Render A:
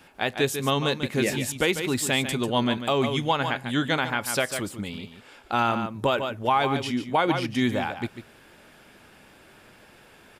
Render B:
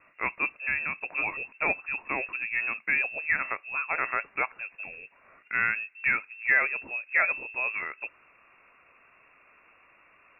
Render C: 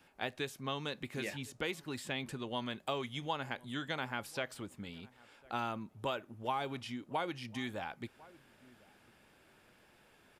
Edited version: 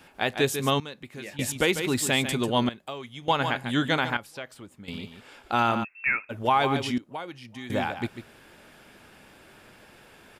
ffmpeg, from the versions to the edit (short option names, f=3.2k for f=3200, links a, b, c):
-filter_complex "[2:a]asplit=4[a][b][c][d];[0:a]asplit=6[e][f][g][h][i][j];[e]atrim=end=0.802[k];[a]atrim=start=0.798:end=1.392[l];[f]atrim=start=1.388:end=2.692[m];[b]atrim=start=2.688:end=3.282[n];[g]atrim=start=3.278:end=4.172[o];[c]atrim=start=4.168:end=4.882[p];[h]atrim=start=4.878:end=5.85[q];[1:a]atrim=start=5.83:end=6.31[r];[i]atrim=start=6.29:end=6.982[s];[d]atrim=start=6.978:end=7.702[t];[j]atrim=start=7.698[u];[k][l]acrossfade=d=0.004:c1=hsin:c2=hsin[v];[v][m]acrossfade=d=0.004:c1=hsin:c2=hsin[w];[w][n]acrossfade=d=0.004:c1=hsin:c2=hsin[x];[x][o]acrossfade=d=0.004:c1=hsin:c2=hsin[y];[y][p]acrossfade=d=0.004:c1=hsin:c2=hsin[z];[z][q]acrossfade=d=0.004:c1=hsin:c2=hsin[aa];[aa][r]acrossfade=d=0.02:c1=tri:c2=tri[ab];[ab][s]acrossfade=d=0.02:c1=tri:c2=tri[ac];[ac][t]acrossfade=d=0.004:c1=hsin:c2=hsin[ad];[ad][u]acrossfade=d=0.004:c1=hsin:c2=hsin"